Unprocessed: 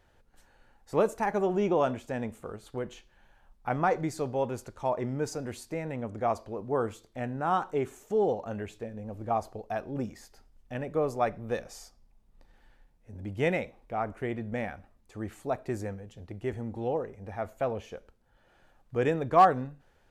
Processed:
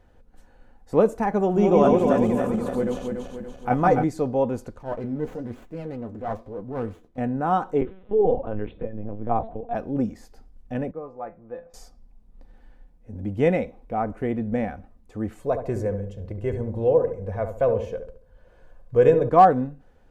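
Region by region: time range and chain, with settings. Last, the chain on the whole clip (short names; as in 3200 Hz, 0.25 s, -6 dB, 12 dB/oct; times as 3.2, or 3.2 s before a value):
1.42–4.04 regenerating reverse delay 0.143 s, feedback 70%, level -2 dB + high shelf 4500 Hz +7.5 dB
4.78–7.18 transient shaper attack -8 dB, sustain 0 dB + flange 1.1 Hz, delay 5.7 ms, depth 7.4 ms, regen +37% + running maximum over 9 samples
7.81–9.75 de-hum 74.05 Hz, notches 14 + LPC vocoder at 8 kHz pitch kept
10.91–11.74 LPF 1500 Hz + low shelf 500 Hz -9 dB + resonator 170 Hz, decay 0.21 s, mix 80%
15.38–19.29 comb 1.9 ms, depth 61% + darkening echo 71 ms, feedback 42%, low-pass 1000 Hz, level -6.5 dB
whole clip: tilt shelf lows +6 dB; comb 4 ms, depth 33%; gain +3 dB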